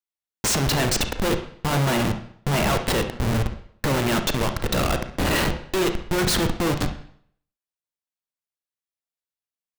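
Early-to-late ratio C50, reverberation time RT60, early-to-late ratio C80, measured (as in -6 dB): 8.5 dB, 0.60 s, 14.5 dB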